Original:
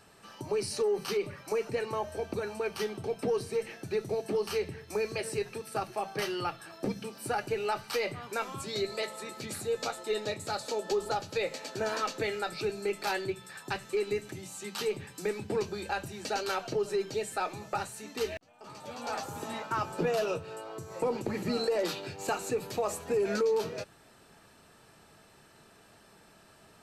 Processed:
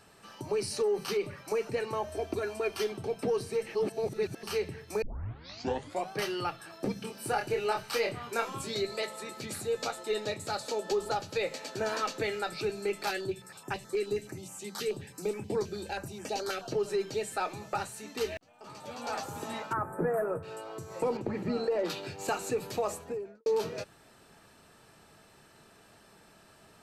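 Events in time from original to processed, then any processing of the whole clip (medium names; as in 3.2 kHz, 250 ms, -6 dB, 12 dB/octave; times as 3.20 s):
2.09–2.92 s: comb 2.9 ms
3.75–4.43 s: reverse
5.02 s: tape start 1.10 s
7.00–8.75 s: doubling 26 ms -4 dB
13.10–16.71 s: step-sequenced notch 9.4 Hz 940–4100 Hz
19.73–20.43 s: elliptic band-stop 1.8–9 kHz
21.17–21.90 s: low-pass 1.6 kHz 6 dB/octave
22.79–23.46 s: studio fade out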